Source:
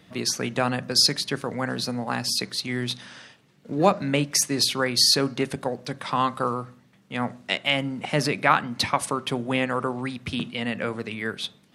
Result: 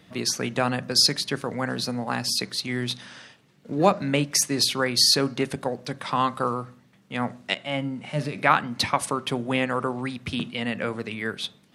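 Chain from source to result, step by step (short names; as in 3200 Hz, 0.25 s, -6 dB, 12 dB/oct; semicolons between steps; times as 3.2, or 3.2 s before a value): 7.54–8.36 harmonic-percussive split percussive -17 dB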